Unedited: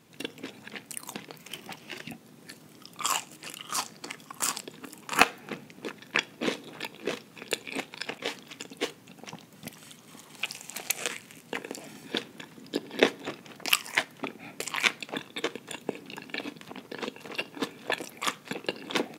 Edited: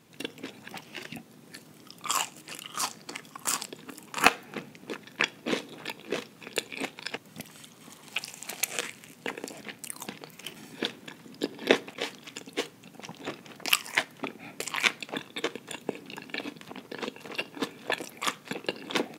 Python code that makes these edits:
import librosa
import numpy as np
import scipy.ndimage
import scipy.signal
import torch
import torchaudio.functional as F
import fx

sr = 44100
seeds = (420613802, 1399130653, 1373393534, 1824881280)

y = fx.edit(x, sr, fx.move(start_s=0.68, length_s=0.95, to_s=11.88),
    fx.move(start_s=8.12, length_s=1.32, to_s=13.2), tone=tone)